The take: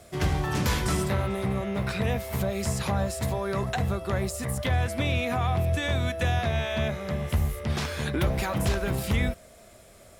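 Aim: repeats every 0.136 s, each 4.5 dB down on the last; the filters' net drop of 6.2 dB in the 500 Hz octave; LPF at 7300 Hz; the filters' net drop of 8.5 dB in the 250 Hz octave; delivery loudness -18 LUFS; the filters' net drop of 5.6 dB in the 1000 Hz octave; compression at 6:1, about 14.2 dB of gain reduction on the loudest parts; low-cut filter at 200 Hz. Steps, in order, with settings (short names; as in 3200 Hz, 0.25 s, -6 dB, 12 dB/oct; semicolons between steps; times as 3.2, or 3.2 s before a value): HPF 200 Hz; LPF 7300 Hz; bell 250 Hz -7 dB; bell 500 Hz -4.5 dB; bell 1000 Hz -5.5 dB; compressor 6:1, threshold -45 dBFS; feedback echo 0.136 s, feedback 60%, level -4.5 dB; gain +27 dB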